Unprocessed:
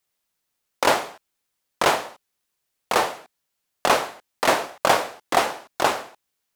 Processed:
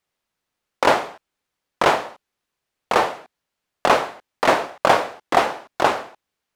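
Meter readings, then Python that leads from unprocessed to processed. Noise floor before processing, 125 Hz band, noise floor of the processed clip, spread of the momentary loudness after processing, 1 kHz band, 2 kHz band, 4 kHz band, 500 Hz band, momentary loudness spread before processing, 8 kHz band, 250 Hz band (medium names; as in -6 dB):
-78 dBFS, +3.5 dB, -82 dBFS, 11 LU, +3.0 dB, +2.0 dB, -1.0 dB, +3.5 dB, 11 LU, -5.0 dB, +3.5 dB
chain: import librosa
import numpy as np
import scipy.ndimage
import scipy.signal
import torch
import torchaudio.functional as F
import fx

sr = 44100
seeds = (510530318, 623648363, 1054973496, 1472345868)

y = fx.lowpass(x, sr, hz=2700.0, slope=6)
y = y * 10.0 ** (3.5 / 20.0)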